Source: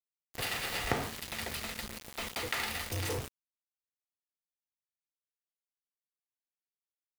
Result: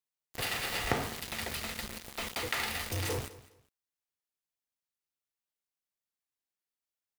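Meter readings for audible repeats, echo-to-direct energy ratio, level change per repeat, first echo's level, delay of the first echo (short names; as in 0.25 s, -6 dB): 2, -18.0 dB, -12.5 dB, -18.0 dB, 0.204 s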